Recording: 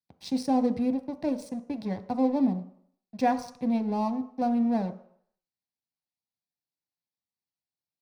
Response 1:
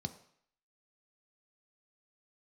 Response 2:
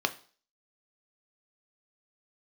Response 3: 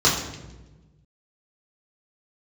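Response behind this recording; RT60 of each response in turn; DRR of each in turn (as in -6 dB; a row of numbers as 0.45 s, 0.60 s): 1; 0.60 s, 0.45 s, 1.2 s; 7.5 dB, 7.0 dB, -6.5 dB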